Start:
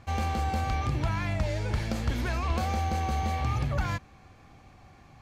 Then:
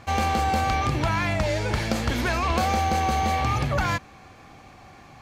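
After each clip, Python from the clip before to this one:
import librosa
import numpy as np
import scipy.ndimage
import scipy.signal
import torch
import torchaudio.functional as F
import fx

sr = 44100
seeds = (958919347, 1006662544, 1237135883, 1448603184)

y = fx.low_shelf(x, sr, hz=150.0, db=-10.0)
y = y * librosa.db_to_amplitude(9.0)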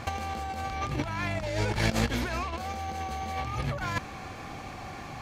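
y = fx.over_compress(x, sr, threshold_db=-29.0, ratio=-0.5)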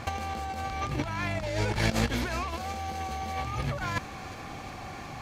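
y = fx.echo_wet_highpass(x, sr, ms=360, feedback_pct=70, hz=4000.0, wet_db=-11.0)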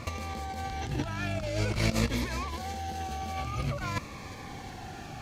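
y = fx.notch_cascade(x, sr, direction='falling', hz=0.51)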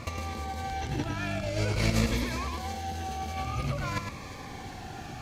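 y = x + 10.0 ** (-6.0 / 20.0) * np.pad(x, (int(107 * sr / 1000.0), 0))[:len(x)]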